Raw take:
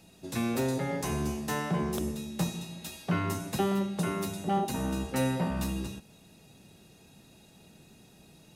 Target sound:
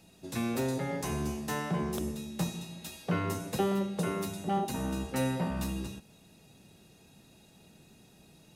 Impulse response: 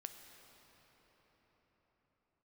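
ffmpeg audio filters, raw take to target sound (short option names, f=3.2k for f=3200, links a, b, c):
-filter_complex "[0:a]asettb=1/sr,asplit=3[a][b][c];[a]atrim=end=3.044[d];[b]atrim=start=3.04:end=4.22,asetpts=PTS-STARTPTS,afade=t=in:d=0.004:c=qsin,afade=t=out:st=1.176:d=0.004:c=qsin,equalizer=f=490:w=4.3:g=9.5[e];[c]atrim=start=4.216[f];[d][e]acrossfade=d=0.004:c1=hsin:c2=qsin[g];[g][f]acrossfade=d=0.004:c1=qsin:c2=hsin,volume=-2dB"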